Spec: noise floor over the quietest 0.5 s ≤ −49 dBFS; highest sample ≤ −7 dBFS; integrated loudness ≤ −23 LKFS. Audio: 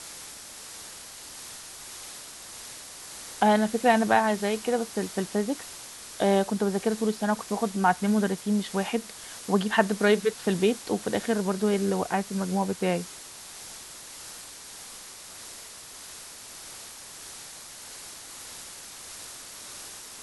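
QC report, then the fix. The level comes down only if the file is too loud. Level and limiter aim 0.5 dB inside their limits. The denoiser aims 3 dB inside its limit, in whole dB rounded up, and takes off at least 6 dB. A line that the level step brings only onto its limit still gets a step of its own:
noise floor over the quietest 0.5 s −44 dBFS: out of spec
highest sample −6.0 dBFS: out of spec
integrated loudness −26.0 LKFS: in spec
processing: broadband denoise 8 dB, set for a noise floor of −44 dBFS
brickwall limiter −7.5 dBFS

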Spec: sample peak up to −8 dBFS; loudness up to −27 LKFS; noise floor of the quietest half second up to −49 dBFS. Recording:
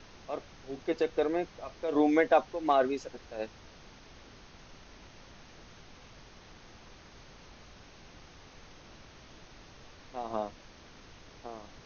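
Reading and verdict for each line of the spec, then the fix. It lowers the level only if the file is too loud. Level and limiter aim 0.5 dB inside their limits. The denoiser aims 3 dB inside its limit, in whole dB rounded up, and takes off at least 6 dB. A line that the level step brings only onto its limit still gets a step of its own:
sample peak −13.0 dBFS: in spec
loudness −31.5 LKFS: in spec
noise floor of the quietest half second −53 dBFS: in spec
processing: no processing needed

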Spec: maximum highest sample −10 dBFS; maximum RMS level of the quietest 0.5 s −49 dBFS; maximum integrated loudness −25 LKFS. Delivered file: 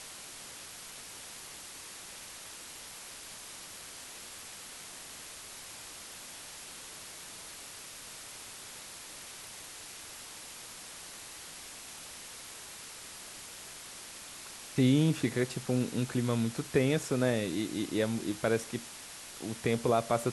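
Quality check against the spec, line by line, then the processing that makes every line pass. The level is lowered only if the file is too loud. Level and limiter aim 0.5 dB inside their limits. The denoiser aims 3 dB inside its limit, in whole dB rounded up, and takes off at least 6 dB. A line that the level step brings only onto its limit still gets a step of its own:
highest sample −14.0 dBFS: in spec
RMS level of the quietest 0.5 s −47 dBFS: out of spec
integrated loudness −36.0 LKFS: in spec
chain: broadband denoise 6 dB, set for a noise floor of −47 dBFS

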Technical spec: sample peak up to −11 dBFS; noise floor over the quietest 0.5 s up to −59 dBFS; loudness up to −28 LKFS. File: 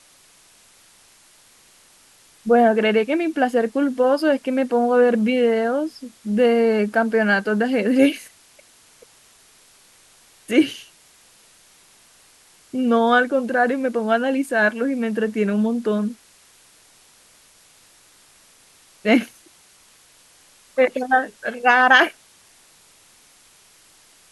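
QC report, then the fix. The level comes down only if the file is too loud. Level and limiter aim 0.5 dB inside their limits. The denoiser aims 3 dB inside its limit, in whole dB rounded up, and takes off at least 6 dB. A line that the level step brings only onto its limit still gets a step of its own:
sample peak −2.5 dBFS: out of spec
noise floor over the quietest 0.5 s −53 dBFS: out of spec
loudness −19.0 LKFS: out of spec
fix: level −9.5 dB

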